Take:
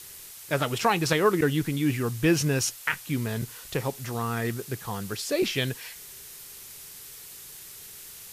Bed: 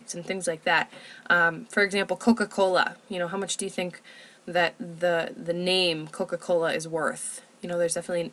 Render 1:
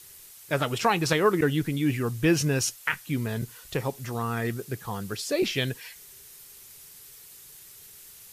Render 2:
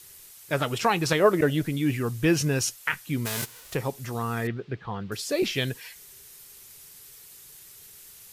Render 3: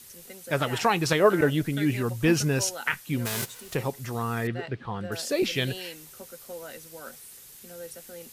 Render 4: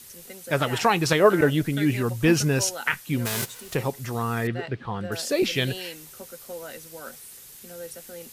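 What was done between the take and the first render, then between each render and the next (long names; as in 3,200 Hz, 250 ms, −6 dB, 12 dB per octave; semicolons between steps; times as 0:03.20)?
broadband denoise 6 dB, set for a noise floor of −45 dBFS
0:01.20–0:01.66: parametric band 610 Hz +14.5 dB 0.29 octaves; 0:03.25–0:03.73: spectral envelope flattened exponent 0.3; 0:04.47–0:05.12: low-pass filter 3,600 Hz 24 dB per octave
mix in bed −16 dB
level +2.5 dB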